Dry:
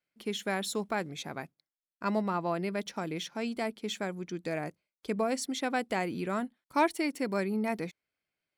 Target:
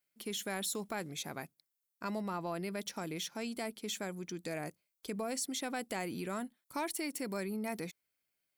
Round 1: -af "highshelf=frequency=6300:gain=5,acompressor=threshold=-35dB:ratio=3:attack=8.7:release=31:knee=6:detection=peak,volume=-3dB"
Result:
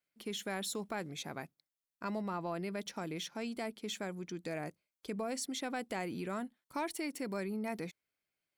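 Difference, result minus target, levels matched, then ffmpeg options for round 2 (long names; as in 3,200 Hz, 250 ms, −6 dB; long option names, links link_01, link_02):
8,000 Hz band −3.5 dB
-af "highshelf=frequency=6300:gain=16,acompressor=threshold=-35dB:ratio=3:attack=8.7:release=31:knee=6:detection=peak,volume=-3dB"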